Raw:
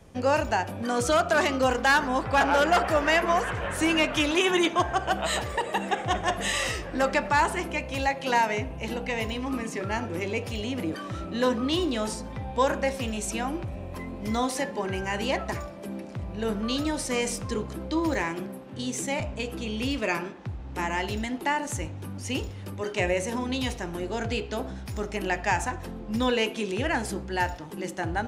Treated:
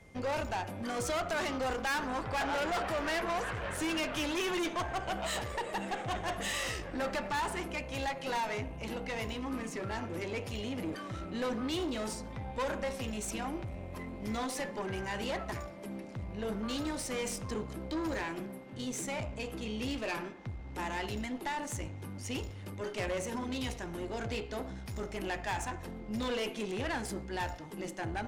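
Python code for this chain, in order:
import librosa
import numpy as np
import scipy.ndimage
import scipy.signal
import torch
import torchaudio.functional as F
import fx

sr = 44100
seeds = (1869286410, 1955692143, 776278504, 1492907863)

y = fx.tube_stage(x, sr, drive_db=26.0, bias=0.5)
y = y + 10.0 ** (-58.0 / 20.0) * np.sin(2.0 * np.pi * 2100.0 * np.arange(len(y)) / sr)
y = F.gain(torch.from_numpy(y), -3.5).numpy()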